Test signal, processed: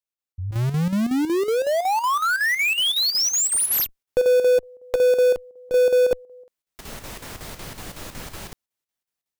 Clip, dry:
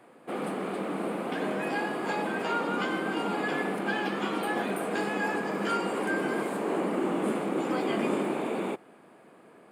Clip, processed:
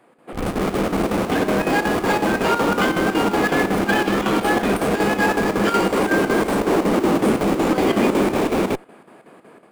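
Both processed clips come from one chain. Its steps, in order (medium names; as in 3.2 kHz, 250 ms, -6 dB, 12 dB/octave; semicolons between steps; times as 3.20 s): level rider gain up to 9 dB; in parallel at -4 dB: Schmitt trigger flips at -23 dBFS; on the sum: square tremolo 5.4 Hz, depth 60%, duty 75%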